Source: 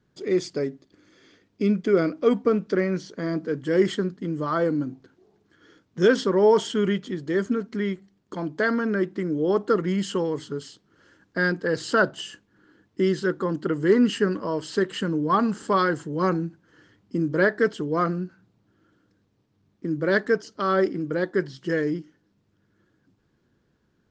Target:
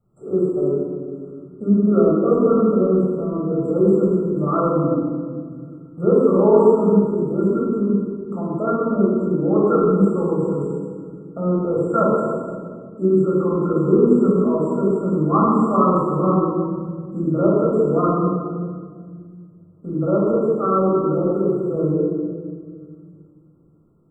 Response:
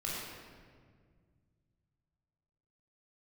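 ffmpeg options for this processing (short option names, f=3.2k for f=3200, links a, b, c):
-filter_complex "[1:a]atrim=start_sample=2205[a];[0:a][a]afir=irnorm=-1:irlink=0,acrossover=split=3400[b][c];[c]acompressor=threshold=-48dB:ratio=4:attack=1:release=60[d];[b][d]amix=inputs=2:normalize=0,afftfilt=real='re*(1-between(b*sr/4096,1400,7400))':imag='im*(1-between(b*sr/4096,1400,7400))':win_size=4096:overlap=0.75,volume=1.5dB"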